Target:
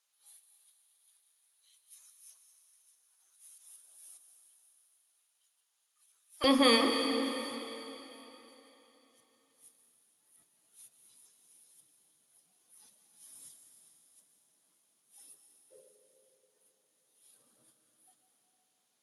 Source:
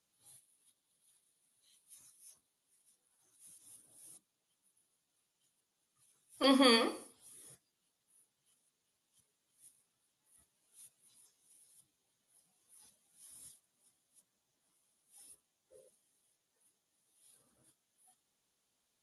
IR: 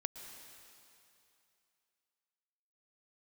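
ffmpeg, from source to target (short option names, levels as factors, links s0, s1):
-filter_complex "[0:a]asetnsamples=n=441:p=0,asendcmd='6.44 highpass f 170',highpass=890[s0];[1:a]atrim=start_sample=2205,asetrate=34839,aresample=44100[s1];[s0][s1]afir=irnorm=-1:irlink=0,volume=1.5"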